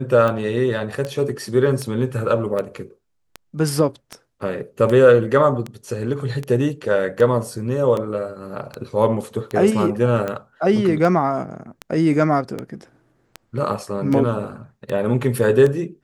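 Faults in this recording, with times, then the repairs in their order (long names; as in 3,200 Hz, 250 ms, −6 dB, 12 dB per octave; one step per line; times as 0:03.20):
scratch tick 78 rpm −13 dBFS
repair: click removal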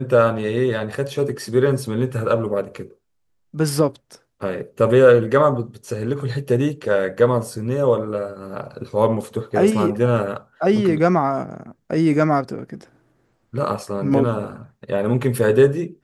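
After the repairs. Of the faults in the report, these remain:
none of them is left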